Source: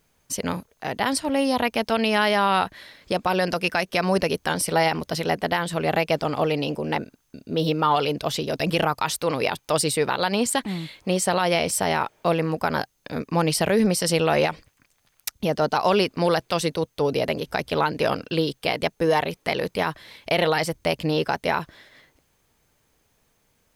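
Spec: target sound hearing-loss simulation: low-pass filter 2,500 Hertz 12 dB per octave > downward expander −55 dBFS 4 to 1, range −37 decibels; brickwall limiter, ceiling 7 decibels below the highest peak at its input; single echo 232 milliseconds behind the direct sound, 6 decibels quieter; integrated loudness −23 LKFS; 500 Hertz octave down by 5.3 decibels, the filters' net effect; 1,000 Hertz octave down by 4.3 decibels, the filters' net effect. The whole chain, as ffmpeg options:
ffmpeg -i in.wav -af "equalizer=frequency=500:width_type=o:gain=-5.5,equalizer=frequency=1000:width_type=o:gain=-3.5,alimiter=limit=-16.5dB:level=0:latency=1,lowpass=2500,aecho=1:1:232:0.501,agate=range=-37dB:threshold=-55dB:ratio=4,volume=6dB" out.wav

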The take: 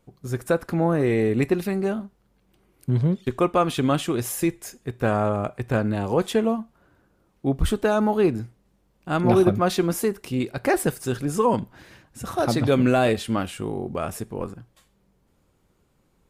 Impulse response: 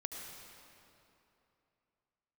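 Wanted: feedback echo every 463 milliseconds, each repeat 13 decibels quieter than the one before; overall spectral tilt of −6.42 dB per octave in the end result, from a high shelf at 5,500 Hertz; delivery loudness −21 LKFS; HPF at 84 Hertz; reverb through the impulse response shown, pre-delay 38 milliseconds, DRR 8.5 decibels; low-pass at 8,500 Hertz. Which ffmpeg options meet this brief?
-filter_complex "[0:a]highpass=84,lowpass=8500,highshelf=frequency=5500:gain=-6,aecho=1:1:463|926|1389:0.224|0.0493|0.0108,asplit=2[link_01][link_02];[1:a]atrim=start_sample=2205,adelay=38[link_03];[link_02][link_03]afir=irnorm=-1:irlink=0,volume=-8dB[link_04];[link_01][link_04]amix=inputs=2:normalize=0,volume=2.5dB"

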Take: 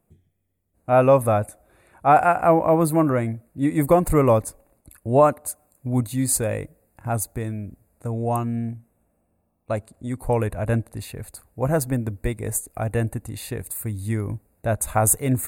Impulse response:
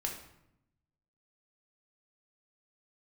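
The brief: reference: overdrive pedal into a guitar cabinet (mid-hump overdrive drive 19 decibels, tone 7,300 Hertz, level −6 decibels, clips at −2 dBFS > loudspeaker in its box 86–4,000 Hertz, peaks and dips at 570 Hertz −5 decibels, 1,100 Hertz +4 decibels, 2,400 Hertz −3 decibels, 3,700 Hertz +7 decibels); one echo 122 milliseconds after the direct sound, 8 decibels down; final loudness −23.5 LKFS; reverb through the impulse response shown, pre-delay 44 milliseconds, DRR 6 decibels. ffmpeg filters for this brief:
-filter_complex "[0:a]aecho=1:1:122:0.398,asplit=2[link_01][link_02];[1:a]atrim=start_sample=2205,adelay=44[link_03];[link_02][link_03]afir=irnorm=-1:irlink=0,volume=-8dB[link_04];[link_01][link_04]amix=inputs=2:normalize=0,asplit=2[link_05][link_06];[link_06]highpass=frequency=720:poles=1,volume=19dB,asoftclip=type=tanh:threshold=-2dB[link_07];[link_05][link_07]amix=inputs=2:normalize=0,lowpass=frequency=7300:poles=1,volume=-6dB,highpass=86,equalizer=frequency=570:width_type=q:width=4:gain=-5,equalizer=frequency=1100:width_type=q:width=4:gain=4,equalizer=frequency=2400:width_type=q:width=4:gain=-3,equalizer=frequency=3700:width_type=q:width=4:gain=7,lowpass=frequency=4000:width=0.5412,lowpass=frequency=4000:width=1.3066,volume=-7dB"

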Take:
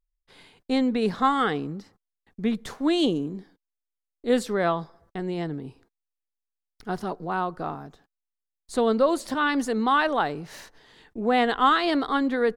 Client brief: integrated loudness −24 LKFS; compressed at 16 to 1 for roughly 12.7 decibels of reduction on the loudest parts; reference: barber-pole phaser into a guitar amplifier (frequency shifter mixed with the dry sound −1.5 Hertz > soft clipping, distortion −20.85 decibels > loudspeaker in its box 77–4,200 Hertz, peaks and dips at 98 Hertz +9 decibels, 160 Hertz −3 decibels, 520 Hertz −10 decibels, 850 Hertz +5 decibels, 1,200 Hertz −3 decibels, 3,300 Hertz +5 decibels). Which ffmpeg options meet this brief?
ffmpeg -i in.wav -filter_complex "[0:a]acompressor=threshold=-28dB:ratio=16,asplit=2[link_01][link_02];[link_02]afreqshift=-1.5[link_03];[link_01][link_03]amix=inputs=2:normalize=1,asoftclip=threshold=-26dB,highpass=77,equalizer=frequency=98:width_type=q:width=4:gain=9,equalizer=frequency=160:width_type=q:width=4:gain=-3,equalizer=frequency=520:width_type=q:width=4:gain=-10,equalizer=frequency=850:width_type=q:width=4:gain=5,equalizer=frequency=1200:width_type=q:width=4:gain=-3,equalizer=frequency=3300:width_type=q:width=4:gain=5,lowpass=frequency=4200:width=0.5412,lowpass=frequency=4200:width=1.3066,volume=15dB" out.wav

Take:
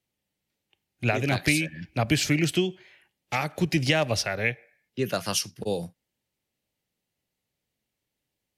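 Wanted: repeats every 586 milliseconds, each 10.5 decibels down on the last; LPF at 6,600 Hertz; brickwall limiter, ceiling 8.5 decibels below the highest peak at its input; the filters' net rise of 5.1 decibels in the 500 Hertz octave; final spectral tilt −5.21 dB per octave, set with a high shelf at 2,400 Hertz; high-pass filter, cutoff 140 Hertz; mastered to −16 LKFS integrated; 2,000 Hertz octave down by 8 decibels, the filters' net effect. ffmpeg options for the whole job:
ffmpeg -i in.wav -af "highpass=140,lowpass=6600,equalizer=frequency=500:width_type=o:gain=7.5,equalizer=frequency=2000:width_type=o:gain=-8.5,highshelf=frequency=2400:gain=-3.5,alimiter=limit=-18.5dB:level=0:latency=1,aecho=1:1:586|1172|1758:0.299|0.0896|0.0269,volume=14.5dB" out.wav

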